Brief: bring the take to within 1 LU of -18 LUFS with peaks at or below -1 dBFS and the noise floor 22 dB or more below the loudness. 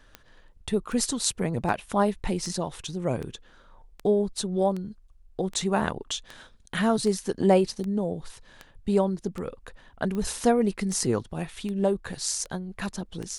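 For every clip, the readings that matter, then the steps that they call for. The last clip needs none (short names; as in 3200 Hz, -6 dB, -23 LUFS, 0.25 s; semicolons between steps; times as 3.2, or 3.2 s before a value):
clicks 18; loudness -27.5 LUFS; peak -7.0 dBFS; loudness target -18.0 LUFS
-> de-click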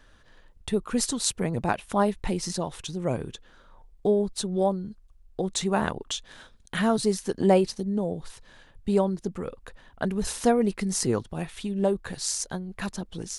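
clicks 0; loudness -27.5 LUFS; peak -7.0 dBFS; loudness target -18.0 LUFS
-> gain +9.5 dB; limiter -1 dBFS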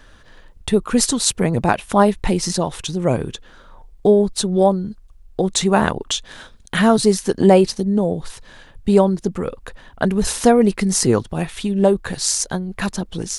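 loudness -18.0 LUFS; peak -1.0 dBFS; noise floor -46 dBFS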